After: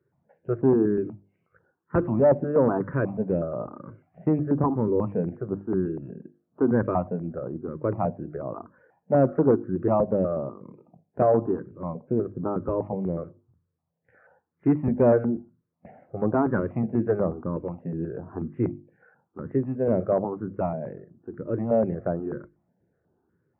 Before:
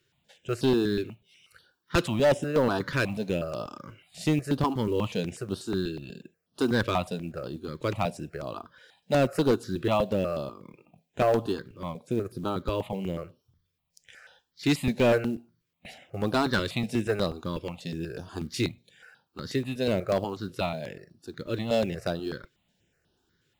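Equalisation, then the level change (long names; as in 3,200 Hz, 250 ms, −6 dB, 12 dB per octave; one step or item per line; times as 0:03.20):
Gaussian smoothing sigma 7.3 samples
high-pass filter 97 Hz
mains-hum notches 50/100/150/200/250/300/350 Hz
+5.0 dB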